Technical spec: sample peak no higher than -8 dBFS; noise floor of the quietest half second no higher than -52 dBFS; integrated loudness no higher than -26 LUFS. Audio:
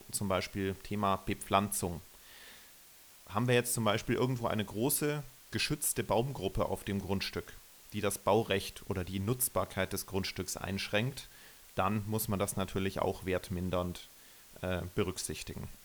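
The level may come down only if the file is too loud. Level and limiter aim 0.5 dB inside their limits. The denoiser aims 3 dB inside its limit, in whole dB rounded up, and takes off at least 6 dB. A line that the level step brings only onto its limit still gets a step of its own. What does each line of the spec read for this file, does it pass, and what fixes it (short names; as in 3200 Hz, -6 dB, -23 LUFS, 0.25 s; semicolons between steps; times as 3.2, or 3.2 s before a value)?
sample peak -13.0 dBFS: OK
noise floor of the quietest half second -57 dBFS: OK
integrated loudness -34.0 LUFS: OK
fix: none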